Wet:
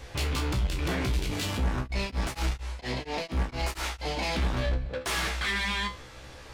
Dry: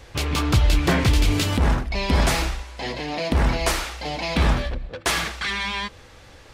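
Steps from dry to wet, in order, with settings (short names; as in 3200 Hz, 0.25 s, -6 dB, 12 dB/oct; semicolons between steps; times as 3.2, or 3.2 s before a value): limiter -17 dBFS, peak gain reduction 8.5 dB; soft clip -25.5 dBFS, distortion -12 dB; resonator 64 Hz, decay 0.25 s, harmonics all, mix 90%; 1.77–4.17 beating tremolo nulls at 4.3 Hz; gain +7 dB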